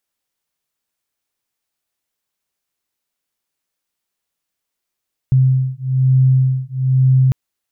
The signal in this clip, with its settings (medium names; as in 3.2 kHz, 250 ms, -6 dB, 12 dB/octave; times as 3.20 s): beating tones 130 Hz, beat 1.1 Hz, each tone -14 dBFS 2.00 s